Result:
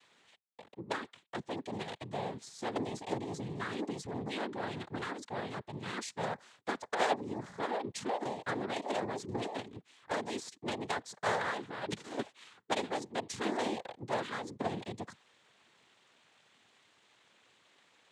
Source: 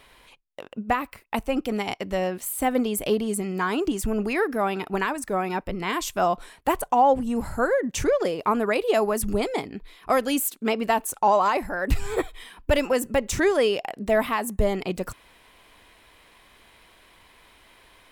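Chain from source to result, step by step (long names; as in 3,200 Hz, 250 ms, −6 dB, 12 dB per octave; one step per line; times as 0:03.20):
harmonic generator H 3 −7 dB, 4 −26 dB, 5 −16 dB, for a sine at −9.5 dBFS
cochlear-implant simulation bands 6
level −4.5 dB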